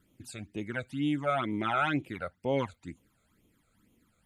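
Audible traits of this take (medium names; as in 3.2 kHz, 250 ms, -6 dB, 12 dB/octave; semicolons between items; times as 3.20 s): phasing stages 12, 2.1 Hz, lowest notch 290–1600 Hz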